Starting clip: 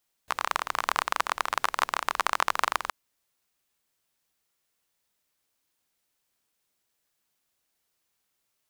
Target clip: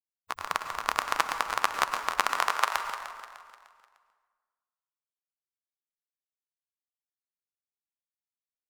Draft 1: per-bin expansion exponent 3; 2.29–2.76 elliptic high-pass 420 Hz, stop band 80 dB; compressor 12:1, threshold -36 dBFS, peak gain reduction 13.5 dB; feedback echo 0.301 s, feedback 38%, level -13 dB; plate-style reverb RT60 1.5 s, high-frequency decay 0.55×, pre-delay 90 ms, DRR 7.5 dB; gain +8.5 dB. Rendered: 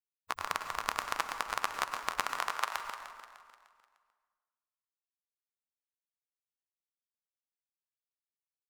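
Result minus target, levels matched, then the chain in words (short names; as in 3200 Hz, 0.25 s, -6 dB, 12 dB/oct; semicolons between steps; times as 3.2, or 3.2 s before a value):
compressor: peak gain reduction +8 dB
per-bin expansion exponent 3; 2.29–2.76 elliptic high-pass 420 Hz, stop band 80 dB; compressor 12:1, threshold -27 dBFS, peak gain reduction 5.5 dB; feedback echo 0.301 s, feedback 38%, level -13 dB; plate-style reverb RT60 1.5 s, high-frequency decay 0.55×, pre-delay 90 ms, DRR 7.5 dB; gain +8.5 dB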